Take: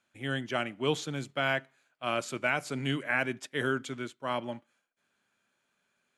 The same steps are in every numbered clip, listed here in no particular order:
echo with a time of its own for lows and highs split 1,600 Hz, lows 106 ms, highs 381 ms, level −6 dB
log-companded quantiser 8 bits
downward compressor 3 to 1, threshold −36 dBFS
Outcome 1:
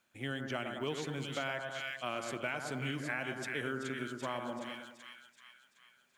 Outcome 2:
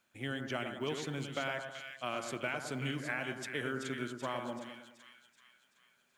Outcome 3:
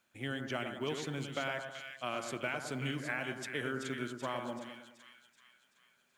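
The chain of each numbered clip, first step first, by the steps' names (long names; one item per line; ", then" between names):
log-companded quantiser, then echo with a time of its own for lows and highs, then downward compressor
log-companded quantiser, then downward compressor, then echo with a time of its own for lows and highs
downward compressor, then log-companded quantiser, then echo with a time of its own for lows and highs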